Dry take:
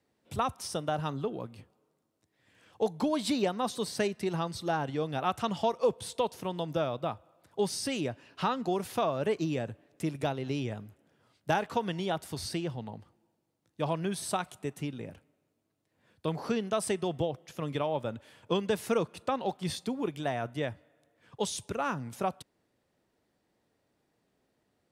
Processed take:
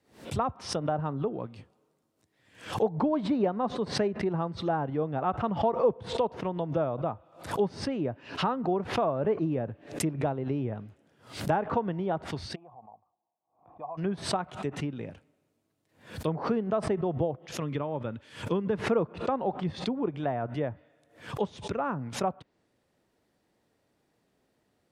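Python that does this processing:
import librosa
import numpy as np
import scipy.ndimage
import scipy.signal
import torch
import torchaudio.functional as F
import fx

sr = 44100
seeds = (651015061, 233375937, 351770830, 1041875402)

y = fx.formant_cascade(x, sr, vowel='a', at=(12.54, 13.97), fade=0.02)
y = fx.peak_eq(y, sr, hz=690.0, db=-7.0, octaves=0.94, at=(17.62, 18.84))
y = fx.env_lowpass_down(y, sr, base_hz=1200.0, full_db=-29.5)
y = fx.pre_swell(y, sr, db_per_s=130.0)
y = F.gain(torch.from_numpy(y), 2.5).numpy()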